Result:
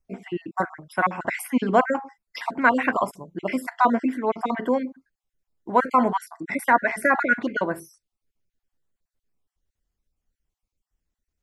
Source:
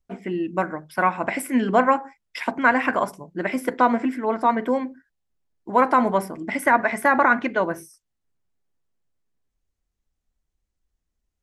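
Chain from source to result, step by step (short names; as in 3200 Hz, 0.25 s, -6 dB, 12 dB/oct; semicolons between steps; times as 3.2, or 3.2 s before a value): random spectral dropouts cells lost 35%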